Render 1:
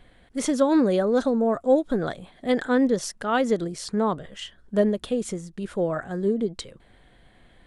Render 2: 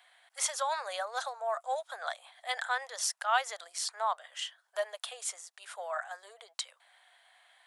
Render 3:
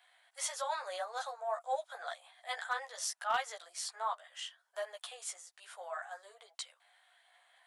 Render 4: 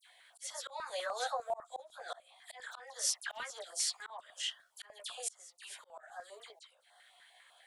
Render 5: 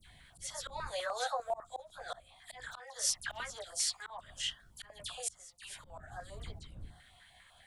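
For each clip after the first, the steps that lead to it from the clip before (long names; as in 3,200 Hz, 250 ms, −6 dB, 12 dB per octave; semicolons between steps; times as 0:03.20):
Butterworth high-pass 680 Hz 48 dB per octave; high-shelf EQ 4,700 Hz +6 dB; level −2.5 dB
multi-voice chorus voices 6, 1.1 Hz, delay 14 ms, depth 3 ms; harmonic and percussive parts rebalanced harmonic +3 dB; hard clipping −21 dBFS, distortion −25 dB; level −3 dB
all-pass dispersion lows, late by 66 ms, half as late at 2,600 Hz; volume swells 404 ms; notch on a step sequencer 10 Hz 600–2,400 Hz; level +7 dB
wind on the microphone 91 Hz −56 dBFS; level +1 dB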